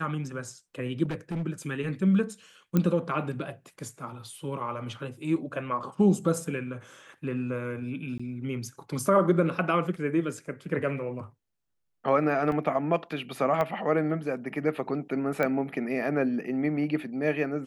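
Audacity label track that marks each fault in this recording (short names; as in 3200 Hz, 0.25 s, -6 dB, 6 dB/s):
1.050000	1.470000	clipped -27.5 dBFS
2.770000	2.770000	pop -12 dBFS
8.180000	8.200000	gap 15 ms
12.520000	12.520000	gap 2 ms
13.610000	13.610000	pop -16 dBFS
15.430000	15.430000	pop -15 dBFS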